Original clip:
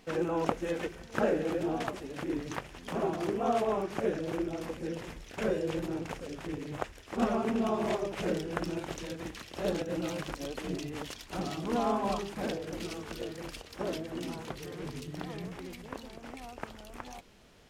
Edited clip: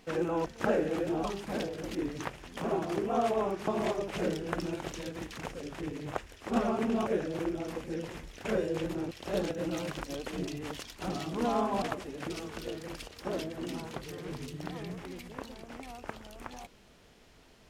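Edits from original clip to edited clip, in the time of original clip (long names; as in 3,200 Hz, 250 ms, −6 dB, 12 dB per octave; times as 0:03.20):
0:00.46–0:01.00: remove
0:01.78–0:02.26: swap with 0:12.13–0:12.84
0:03.99–0:06.04: swap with 0:07.72–0:09.42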